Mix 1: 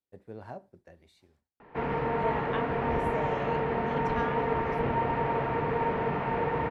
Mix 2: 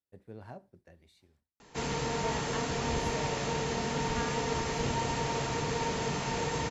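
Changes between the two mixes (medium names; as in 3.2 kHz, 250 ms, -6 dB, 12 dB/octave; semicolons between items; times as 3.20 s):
background: remove low-pass 2.3 kHz 24 dB/octave; master: add peaking EQ 710 Hz -5.5 dB 2.8 oct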